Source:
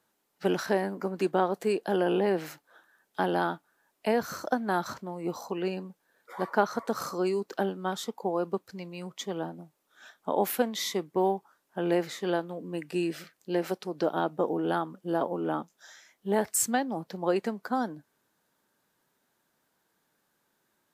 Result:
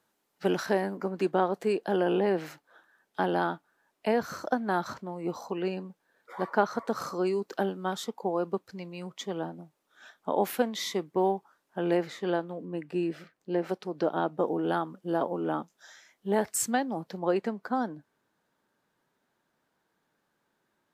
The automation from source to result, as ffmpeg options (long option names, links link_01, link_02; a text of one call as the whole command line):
ffmpeg -i in.wav -af "asetnsamples=nb_out_samples=441:pad=0,asendcmd='0.97 lowpass f 4900;7.43 lowpass f 12000;8.06 lowpass f 6200;11.97 lowpass f 3100;12.65 lowpass f 1500;13.69 lowpass f 3300;14.38 lowpass f 7800;17.19 lowpass f 3100',lowpass=frequency=11000:poles=1" out.wav